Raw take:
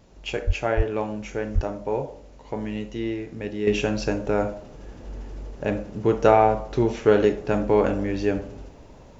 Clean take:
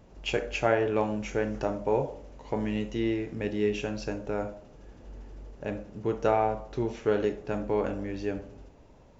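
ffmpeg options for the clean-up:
-filter_complex "[0:a]asplit=3[s0][s1][s2];[s0]afade=t=out:st=0.46:d=0.02[s3];[s1]highpass=f=140:w=0.5412,highpass=f=140:w=1.3066,afade=t=in:st=0.46:d=0.02,afade=t=out:st=0.58:d=0.02[s4];[s2]afade=t=in:st=0.58:d=0.02[s5];[s3][s4][s5]amix=inputs=3:normalize=0,asplit=3[s6][s7][s8];[s6]afade=t=out:st=0.76:d=0.02[s9];[s7]highpass=f=140:w=0.5412,highpass=f=140:w=1.3066,afade=t=in:st=0.76:d=0.02,afade=t=out:st=0.88:d=0.02[s10];[s8]afade=t=in:st=0.88:d=0.02[s11];[s9][s10][s11]amix=inputs=3:normalize=0,asplit=3[s12][s13][s14];[s12]afade=t=out:st=1.54:d=0.02[s15];[s13]highpass=f=140:w=0.5412,highpass=f=140:w=1.3066,afade=t=in:st=1.54:d=0.02,afade=t=out:st=1.66:d=0.02[s16];[s14]afade=t=in:st=1.66:d=0.02[s17];[s15][s16][s17]amix=inputs=3:normalize=0,agate=range=0.0891:threshold=0.0141,asetnsamples=n=441:p=0,asendcmd='3.67 volume volume -8.5dB',volume=1"

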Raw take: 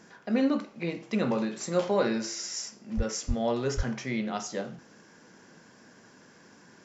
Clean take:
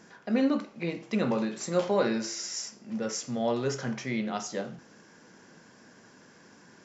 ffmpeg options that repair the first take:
-filter_complex "[0:a]asplit=3[s0][s1][s2];[s0]afade=t=out:st=2.96:d=0.02[s3];[s1]highpass=f=140:w=0.5412,highpass=f=140:w=1.3066,afade=t=in:st=2.96:d=0.02,afade=t=out:st=3.08:d=0.02[s4];[s2]afade=t=in:st=3.08:d=0.02[s5];[s3][s4][s5]amix=inputs=3:normalize=0,asplit=3[s6][s7][s8];[s6]afade=t=out:st=3.27:d=0.02[s9];[s7]highpass=f=140:w=0.5412,highpass=f=140:w=1.3066,afade=t=in:st=3.27:d=0.02,afade=t=out:st=3.39:d=0.02[s10];[s8]afade=t=in:st=3.39:d=0.02[s11];[s9][s10][s11]amix=inputs=3:normalize=0,asplit=3[s12][s13][s14];[s12]afade=t=out:st=3.76:d=0.02[s15];[s13]highpass=f=140:w=0.5412,highpass=f=140:w=1.3066,afade=t=in:st=3.76:d=0.02,afade=t=out:st=3.88:d=0.02[s16];[s14]afade=t=in:st=3.88:d=0.02[s17];[s15][s16][s17]amix=inputs=3:normalize=0"

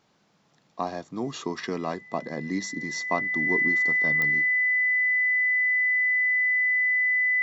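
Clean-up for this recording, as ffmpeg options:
-af "adeclick=t=4,bandreject=f=2000:w=30"

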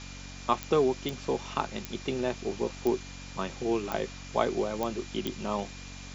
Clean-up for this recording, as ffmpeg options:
-af "adeclick=t=4,bandreject=f=46.6:t=h:w=4,bandreject=f=93.2:t=h:w=4,bandreject=f=139.8:t=h:w=4,bandreject=f=186.4:t=h:w=4,bandreject=f=233:t=h:w=4,bandreject=f=279.6:t=h:w=4,bandreject=f=2400:w=30,afwtdn=0.0063"

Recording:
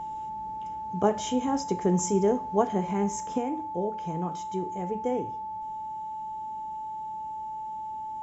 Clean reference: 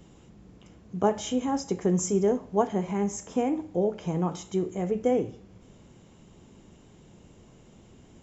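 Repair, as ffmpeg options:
-af "bandreject=f=870:w=30,asetnsamples=n=441:p=0,asendcmd='3.38 volume volume 5dB',volume=1"

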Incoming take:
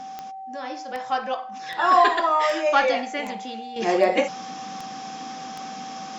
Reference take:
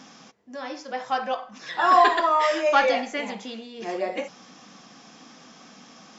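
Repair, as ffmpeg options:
-af "adeclick=t=4,bandreject=f=770:w=30,asetnsamples=n=441:p=0,asendcmd='3.76 volume volume -9dB',volume=1"

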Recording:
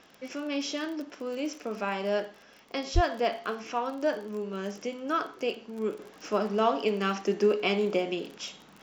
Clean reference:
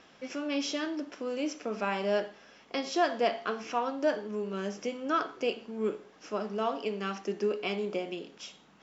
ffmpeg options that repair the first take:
-filter_complex "[0:a]adeclick=t=4,asplit=3[s0][s1][s2];[s0]afade=t=out:st=2.94:d=0.02[s3];[s1]highpass=f=140:w=0.5412,highpass=f=140:w=1.3066,afade=t=in:st=2.94:d=0.02,afade=t=out:st=3.06:d=0.02[s4];[s2]afade=t=in:st=3.06:d=0.02[s5];[s3][s4][s5]amix=inputs=3:normalize=0,agate=range=0.0891:threshold=0.00562,asetnsamples=n=441:p=0,asendcmd='5.99 volume volume -6dB',volume=1"

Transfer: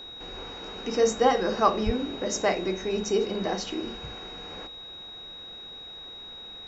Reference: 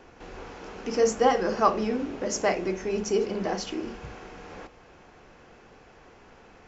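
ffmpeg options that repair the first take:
-filter_complex "[0:a]bandreject=f=3800:w=30,asplit=3[s0][s1][s2];[s0]afade=t=out:st=1.85:d=0.02[s3];[s1]highpass=f=140:w=0.5412,highpass=f=140:w=1.3066,afade=t=in:st=1.85:d=0.02,afade=t=out:st=1.97:d=0.02[s4];[s2]afade=t=in:st=1.97:d=0.02[s5];[s3][s4][s5]amix=inputs=3:normalize=0"

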